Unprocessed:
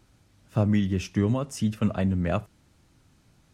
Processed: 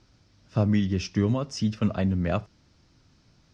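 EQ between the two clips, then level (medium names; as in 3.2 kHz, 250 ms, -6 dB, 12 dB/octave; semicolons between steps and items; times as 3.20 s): resonant low-pass 5.3 kHz, resonance Q 3.8; treble shelf 4.2 kHz -7.5 dB; band-stop 810 Hz, Q 23; 0.0 dB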